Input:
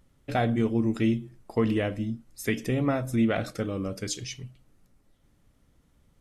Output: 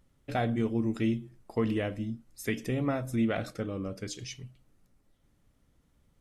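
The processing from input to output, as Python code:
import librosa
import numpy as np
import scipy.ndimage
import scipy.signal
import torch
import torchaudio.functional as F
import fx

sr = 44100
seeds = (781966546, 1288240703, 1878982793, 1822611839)

y = fx.high_shelf(x, sr, hz=4200.0, db=-6.5, at=(3.54, 4.19))
y = F.gain(torch.from_numpy(y), -4.0).numpy()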